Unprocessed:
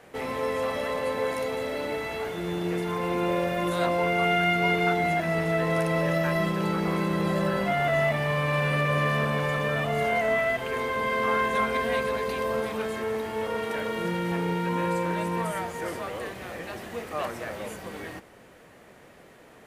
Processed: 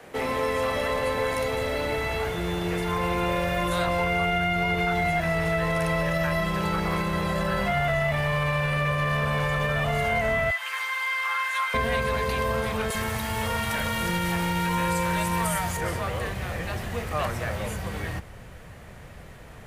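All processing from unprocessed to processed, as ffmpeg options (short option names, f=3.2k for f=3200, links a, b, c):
-filter_complex "[0:a]asettb=1/sr,asplit=3[a][b][c];[a]atrim=end=10.504[d];[b]atrim=start=10.5:end=11.74,asetpts=PTS-STARTPTS,afade=t=in:d=0.004:c=qsin,afade=t=out:st=1.236:d=0.004:c=qsin,highpass=f=1.1k:w=0.5412,highpass=f=1.1k:w=1.3066,asplit=2[e][f];[f]adelay=13,volume=-2.5dB[g];[e][g]amix=inputs=2:normalize=0,atrim=end_sample=54684[h];[c]atrim=start=11.736[i];[d][h]acrossfade=d=0.004:c1=hsin:c2=qsin[j];[j][i]acrossfade=d=0.004:c1=qsin:c2=hsin,asettb=1/sr,asplit=3[k][l][m];[k]atrim=end=12.904[n];[l]atrim=start=12.9:end=15.77,asetpts=PTS-STARTPTS,afade=t=in:d=0.004:c=qsin,afade=t=out:st=2.866:d=0.004:c=qsin,highshelf=f=4.1k:g=10.5,acrossover=split=410[o][p];[o]adelay=40[q];[q][p]amix=inputs=2:normalize=0,atrim=end_sample=126567[r];[m]atrim=start=15.766[s];[n][r]acrossfade=d=0.004:c1=hsin:c2=qsin[t];[t][s]acrossfade=d=0.004:c1=qsin:c2=hsin,asubboost=boost=9.5:cutoff=98,alimiter=limit=-17dB:level=0:latency=1,acrossover=split=96|340|940[u][v][w][x];[u]acompressor=threshold=-39dB:ratio=4[y];[v]acompressor=threshold=-38dB:ratio=4[z];[w]acompressor=threshold=-33dB:ratio=4[aa];[x]acompressor=threshold=-31dB:ratio=4[ab];[y][z][aa][ab]amix=inputs=4:normalize=0,volume=5dB"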